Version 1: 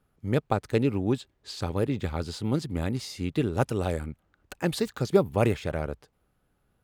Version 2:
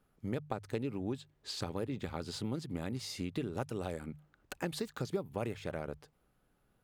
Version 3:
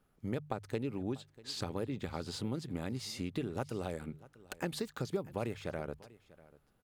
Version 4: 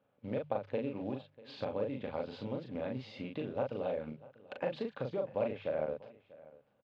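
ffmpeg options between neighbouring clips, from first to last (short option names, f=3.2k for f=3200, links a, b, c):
-af "equalizer=f=78:t=o:w=0.31:g=-10.5,bandreject=f=50:t=h:w=6,bandreject=f=100:t=h:w=6,bandreject=f=150:t=h:w=6,acompressor=threshold=-33dB:ratio=4,volume=-1.5dB"
-af "aecho=1:1:643:0.0944"
-filter_complex "[0:a]acrusher=bits=6:mode=log:mix=0:aa=0.000001,highpass=140,equalizer=f=170:t=q:w=4:g=-7,equalizer=f=360:t=q:w=4:g=-9,equalizer=f=550:t=q:w=4:g=10,equalizer=f=1.3k:t=q:w=4:g=-6,equalizer=f=1.9k:t=q:w=4:g=-5,lowpass=f=3.1k:w=0.5412,lowpass=f=3.1k:w=1.3066,asplit=2[a][b];[b]adelay=39,volume=-3.5dB[c];[a][c]amix=inputs=2:normalize=0"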